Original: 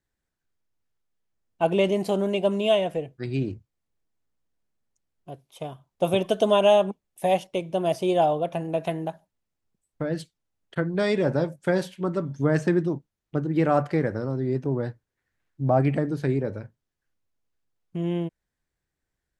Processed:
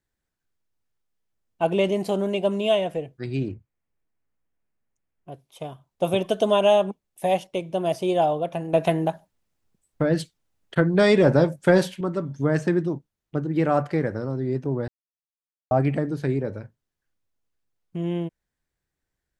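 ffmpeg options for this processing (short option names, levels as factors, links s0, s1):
-filter_complex "[0:a]asettb=1/sr,asplit=3[s0][s1][s2];[s0]atrim=end=3.484[s3];[s1]atrim=start=3.48:end=5.32,asetpts=PTS-STARTPTS,afade=t=in:d=0.004:c=qsin,afade=t=out:st=1.836:d=0.004:c=qsin,highshelf=f=3000:t=q:w=1.5:g=-7[s4];[s2]atrim=start=5.316[s5];[s3][s4]acrossfade=d=0.004:c1=hsin:c2=qsin[s6];[s6][s5]acrossfade=d=0.004:c1=qsin:c2=hsin,asettb=1/sr,asplit=3[s7][s8][s9];[s7]atrim=end=8.734[s10];[s8]atrim=start=8.73:end=12.01,asetpts=PTS-STARTPTS,afade=t=in:d=0.004:c=qsin,afade=t=out:st=3.276:d=0.004:c=qsin,acontrast=70[s11];[s9]atrim=start=12.006[s12];[s10][s11]acrossfade=d=0.004:c1=hsin:c2=qsin[s13];[s13][s12]acrossfade=d=0.004:c1=qsin:c2=hsin,asplit=3[s14][s15][s16];[s14]atrim=end=14.88,asetpts=PTS-STARTPTS,afade=t=out:st=14.876:d=0.004:c=hsin[s17];[s15]atrim=start=14.88:end=15.71,asetpts=PTS-STARTPTS,volume=0[s18];[s16]atrim=start=15.71,asetpts=PTS-STARTPTS,afade=t=in:d=0.004:c=hsin[s19];[s17][s18][s19]concat=n=3:v=0:a=1"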